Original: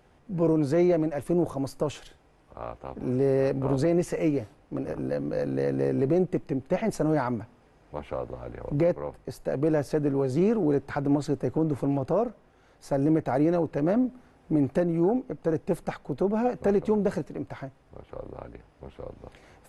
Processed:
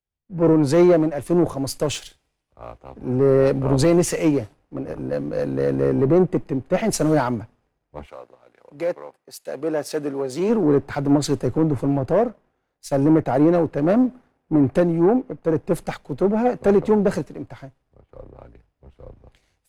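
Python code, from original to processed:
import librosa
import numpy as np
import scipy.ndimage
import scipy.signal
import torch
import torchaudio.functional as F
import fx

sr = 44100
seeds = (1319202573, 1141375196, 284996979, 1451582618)

y = fx.highpass(x, sr, hz=fx.line((8.05, 960.0), (10.48, 380.0)), slope=6, at=(8.05, 10.48), fade=0.02)
y = fx.leveller(y, sr, passes=1)
y = fx.band_widen(y, sr, depth_pct=100)
y = F.gain(torch.from_numpy(y), 4.0).numpy()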